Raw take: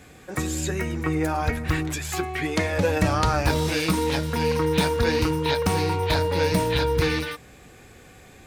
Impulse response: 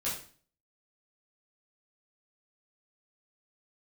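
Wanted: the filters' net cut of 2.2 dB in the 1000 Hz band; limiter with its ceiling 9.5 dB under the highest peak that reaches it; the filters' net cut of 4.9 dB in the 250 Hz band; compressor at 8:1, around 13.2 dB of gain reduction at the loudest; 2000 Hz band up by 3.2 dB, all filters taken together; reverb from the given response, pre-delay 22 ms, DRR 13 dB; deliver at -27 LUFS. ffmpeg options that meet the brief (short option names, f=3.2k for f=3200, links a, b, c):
-filter_complex "[0:a]equalizer=f=250:t=o:g=-7.5,equalizer=f=1k:t=o:g=-3.5,equalizer=f=2k:t=o:g=5,acompressor=threshold=-32dB:ratio=8,alimiter=level_in=4dB:limit=-24dB:level=0:latency=1,volume=-4dB,asplit=2[a][b];[1:a]atrim=start_sample=2205,adelay=22[c];[b][c]afir=irnorm=-1:irlink=0,volume=-17.5dB[d];[a][d]amix=inputs=2:normalize=0,volume=10dB"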